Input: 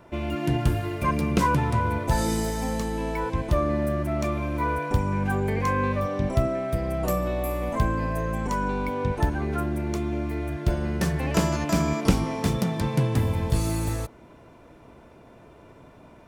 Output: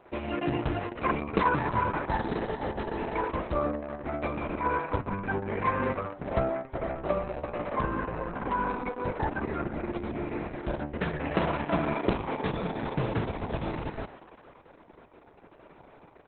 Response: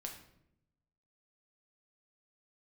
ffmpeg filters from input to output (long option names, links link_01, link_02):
-filter_complex "[0:a]bass=frequency=250:gain=-9,treble=frequency=4000:gain=-15,asplit=8[link_01][link_02][link_03][link_04][link_05][link_06][link_07][link_08];[link_02]adelay=119,afreqshift=140,volume=-17.5dB[link_09];[link_03]adelay=238,afreqshift=280,volume=-21.2dB[link_10];[link_04]adelay=357,afreqshift=420,volume=-25dB[link_11];[link_05]adelay=476,afreqshift=560,volume=-28.7dB[link_12];[link_06]adelay=595,afreqshift=700,volume=-32.5dB[link_13];[link_07]adelay=714,afreqshift=840,volume=-36.2dB[link_14];[link_08]adelay=833,afreqshift=980,volume=-40dB[link_15];[link_01][link_09][link_10][link_11][link_12][link_13][link_14][link_15]amix=inputs=8:normalize=0" -ar 48000 -c:a libopus -b:a 6k